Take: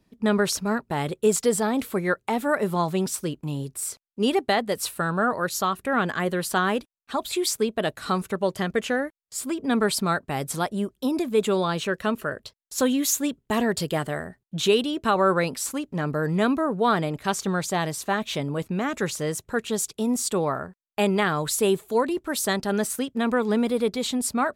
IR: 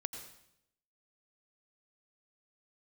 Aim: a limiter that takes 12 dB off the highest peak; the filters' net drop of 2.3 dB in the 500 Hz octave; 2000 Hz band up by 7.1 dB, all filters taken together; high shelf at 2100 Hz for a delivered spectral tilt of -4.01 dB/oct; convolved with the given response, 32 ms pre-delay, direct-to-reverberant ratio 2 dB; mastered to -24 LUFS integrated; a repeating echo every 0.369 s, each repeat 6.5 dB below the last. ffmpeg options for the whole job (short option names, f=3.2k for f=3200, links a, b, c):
-filter_complex "[0:a]equalizer=f=500:t=o:g=-3.5,equalizer=f=2k:t=o:g=7,highshelf=f=2.1k:g=5,alimiter=limit=-16.5dB:level=0:latency=1,aecho=1:1:369|738|1107|1476|1845|2214:0.473|0.222|0.105|0.0491|0.0231|0.0109,asplit=2[a][b];[1:a]atrim=start_sample=2205,adelay=32[c];[b][c]afir=irnorm=-1:irlink=0,volume=-1.5dB[d];[a][d]amix=inputs=2:normalize=0,volume=-0.5dB"